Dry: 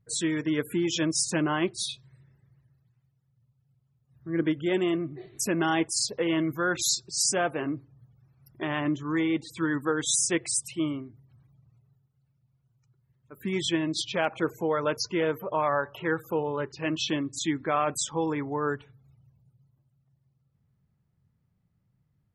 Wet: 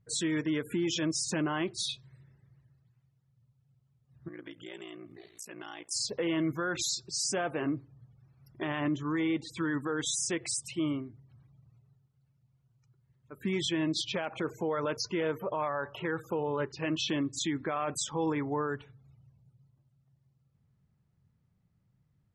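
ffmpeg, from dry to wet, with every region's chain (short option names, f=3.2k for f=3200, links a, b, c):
-filter_complex "[0:a]asettb=1/sr,asplit=3[a][b][c];[a]atrim=end=4.284[d];[b]atrim=start=4.28:end=5.91,asetpts=PTS-STARTPTS,afade=t=in:d=0.004:c=qsin,afade=t=out:st=1.626:d=0.004:c=qsin,aemphasis=mode=production:type=riaa,acompressor=threshold=-43dB:ratio=3:attack=3.2:release=140:knee=1:detection=peak,aeval=exprs='val(0)*sin(2*PI*29*n/s)':c=same[e];[c]atrim=start=5.906[f];[d][e]acrossfade=d=0.004:c1=hsin:c2=qsin[g];[g][f]acrossfade=d=0.004:c1=qsin:c2=hsin,lowpass=7.8k,alimiter=limit=-23dB:level=0:latency=1:release=62"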